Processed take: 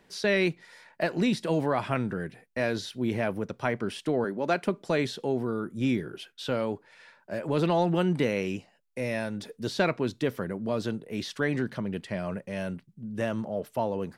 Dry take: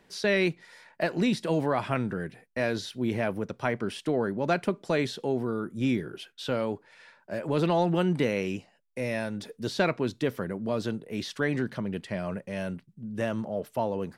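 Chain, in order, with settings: 4.24–4.65 s: high-pass 210 Hz 12 dB/octave

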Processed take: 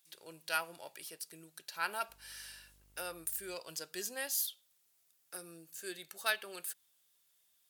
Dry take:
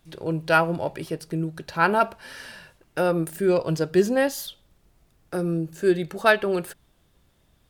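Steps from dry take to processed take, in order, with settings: differentiator; 2.08–3.54 s: mains buzz 50 Hz, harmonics 39, -66 dBFS -8 dB/octave; trim -1 dB

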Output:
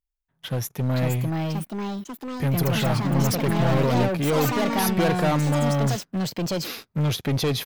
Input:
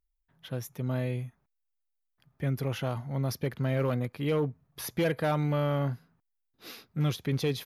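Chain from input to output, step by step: 1.21–2.69 s: treble shelf 7.3 kHz +10 dB; waveshaping leveller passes 3; ever faster or slower copies 611 ms, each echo +4 st, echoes 3

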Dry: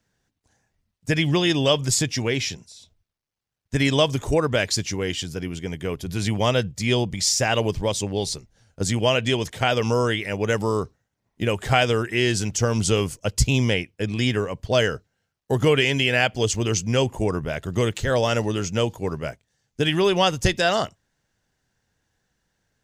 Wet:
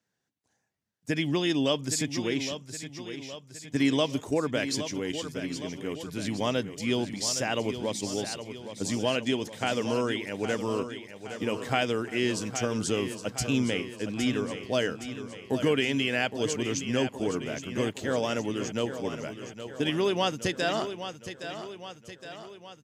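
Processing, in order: high-pass 150 Hz 12 dB/octave; feedback delay 816 ms, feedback 57%, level -10 dB; dynamic bell 270 Hz, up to +8 dB, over -41 dBFS, Q 2.8; trim -8 dB

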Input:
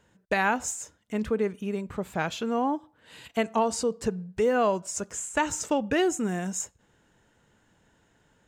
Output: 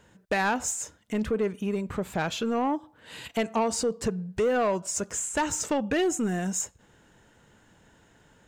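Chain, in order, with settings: in parallel at -0.5 dB: compression, threshold -35 dBFS, peak gain reduction 14.5 dB; on the sum: saturation -18.5 dBFS, distortion -15 dB

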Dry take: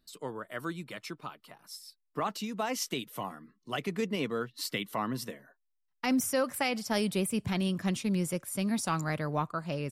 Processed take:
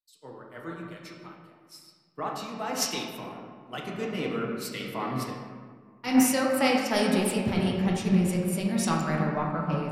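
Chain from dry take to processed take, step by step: reverberation RT60 3.3 s, pre-delay 6 ms, DRR -2.5 dB; 4.34–5.00 s: dynamic bell 4.3 kHz, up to -6 dB, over -48 dBFS, Q 1.7; three bands expanded up and down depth 100%

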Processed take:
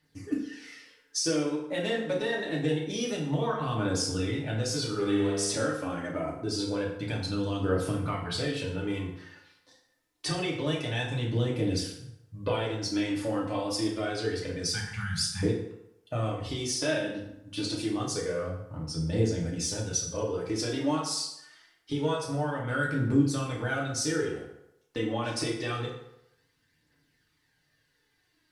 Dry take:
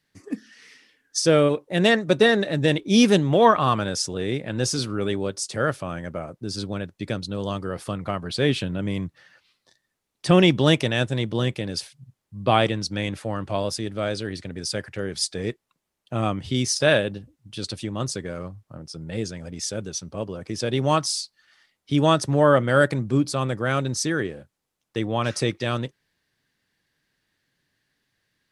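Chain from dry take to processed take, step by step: 14.69–15.43 s: Chebyshev band-stop 220–790 Hz, order 5; compression 6:1, threshold -28 dBFS, peak gain reduction 16.5 dB; phaser 0.26 Hz, delay 4 ms, feedback 52%; 4.85–5.52 s: flutter echo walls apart 10.2 m, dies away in 1.3 s; FDN reverb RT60 0.83 s, low-frequency decay 0.85×, high-frequency decay 0.7×, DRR -4 dB; trim -4.5 dB

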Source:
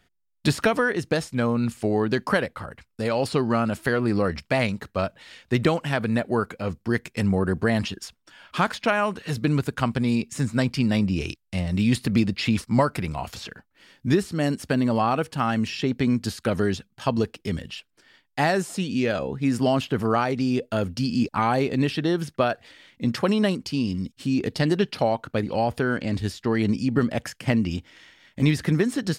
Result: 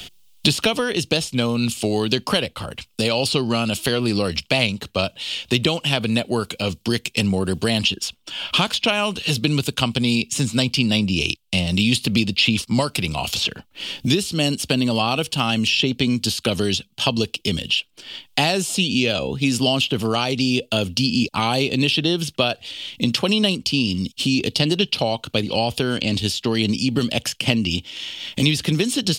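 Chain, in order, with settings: resonant high shelf 2.3 kHz +8.5 dB, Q 3; three bands compressed up and down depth 70%; trim +1.5 dB

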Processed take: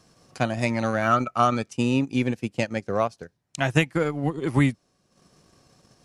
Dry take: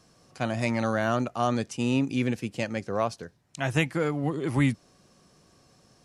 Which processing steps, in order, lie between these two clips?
transient shaper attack +5 dB, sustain -10 dB; 1.02–1.69 s: small resonant body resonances 1.3/2.3 kHz, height 16 dB; trim +1.5 dB

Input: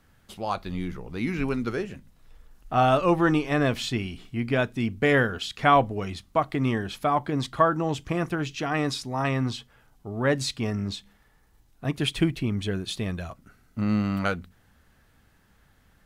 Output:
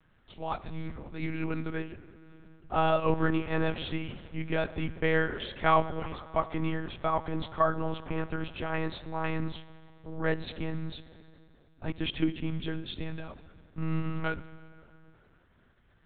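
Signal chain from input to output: plate-style reverb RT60 2.9 s, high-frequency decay 0.75×, DRR 14 dB; monotone LPC vocoder at 8 kHz 160 Hz; trim -5 dB

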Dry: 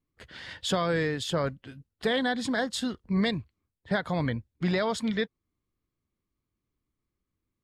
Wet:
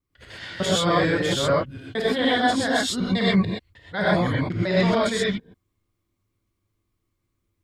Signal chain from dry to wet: time reversed locally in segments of 150 ms; gated-style reverb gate 150 ms rising, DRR -7 dB

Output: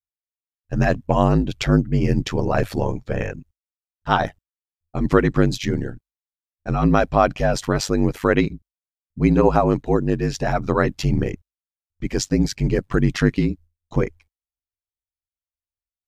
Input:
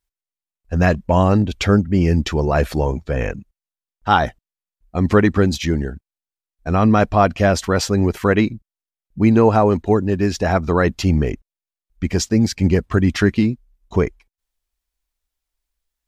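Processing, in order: gate with hold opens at -47 dBFS; ring modulator 49 Hz

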